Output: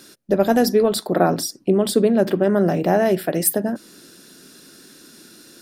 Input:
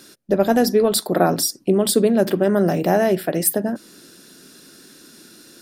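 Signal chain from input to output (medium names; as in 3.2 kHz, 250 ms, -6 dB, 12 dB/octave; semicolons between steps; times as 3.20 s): 0.83–3.06 s: treble shelf 5.2 kHz -8.5 dB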